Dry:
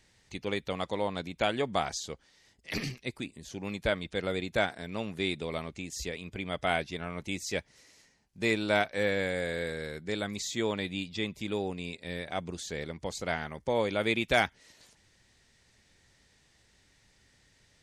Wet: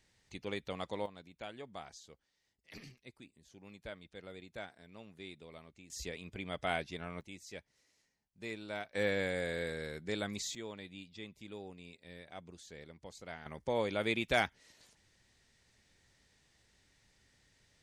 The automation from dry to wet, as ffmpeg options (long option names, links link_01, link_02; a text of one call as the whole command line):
ffmpeg -i in.wav -af "asetnsamples=nb_out_samples=441:pad=0,asendcmd='1.06 volume volume -17.5dB;5.9 volume volume -6dB;7.21 volume volume -15dB;8.95 volume volume -4dB;10.55 volume volume -14.5dB;13.46 volume volume -5dB',volume=-7dB" out.wav